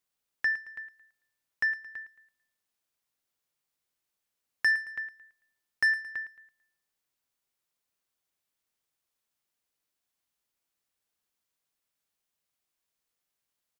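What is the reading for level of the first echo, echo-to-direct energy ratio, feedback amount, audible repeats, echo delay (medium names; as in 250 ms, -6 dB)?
-13.5 dB, -13.0 dB, 37%, 3, 111 ms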